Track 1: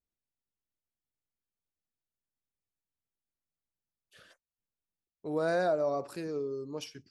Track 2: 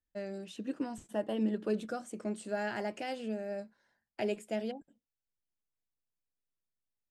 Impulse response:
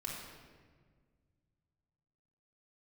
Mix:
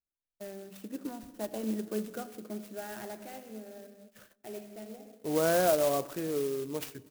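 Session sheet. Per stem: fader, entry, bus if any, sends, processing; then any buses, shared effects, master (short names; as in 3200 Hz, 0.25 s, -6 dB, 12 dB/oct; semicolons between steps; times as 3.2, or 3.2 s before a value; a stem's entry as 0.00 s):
+2.5 dB, 0.00 s, send -18.5 dB, dry
-4.0 dB, 0.25 s, send -9 dB, auto duck -12 dB, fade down 1.85 s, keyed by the first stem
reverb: on, RT60 1.7 s, pre-delay 3 ms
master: gate -54 dBFS, range -11 dB; clock jitter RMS 0.072 ms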